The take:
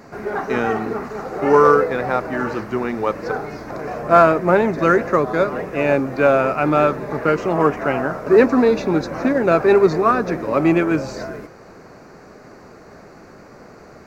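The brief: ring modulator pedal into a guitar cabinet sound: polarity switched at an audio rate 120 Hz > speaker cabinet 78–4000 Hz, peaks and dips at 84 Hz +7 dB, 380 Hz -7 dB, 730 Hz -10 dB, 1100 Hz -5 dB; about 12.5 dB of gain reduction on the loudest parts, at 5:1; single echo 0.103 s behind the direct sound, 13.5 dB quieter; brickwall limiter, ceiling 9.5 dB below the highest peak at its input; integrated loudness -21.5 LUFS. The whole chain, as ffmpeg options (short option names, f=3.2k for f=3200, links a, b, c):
-af "acompressor=threshold=-22dB:ratio=5,alimiter=limit=-20dB:level=0:latency=1,aecho=1:1:103:0.211,aeval=exprs='val(0)*sgn(sin(2*PI*120*n/s))':c=same,highpass=78,equalizer=f=84:t=q:w=4:g=7,equalizer=f=380:t=q:w=4:g=-7,equalizer=f=730:t=q:w=4:g=-10,equalizer=f=1.1k:t=q:w=4:g=-5,lowpass=f=4k:w=0.5412,lowpass=f=4k:w=1.3066,volume=10.5dB"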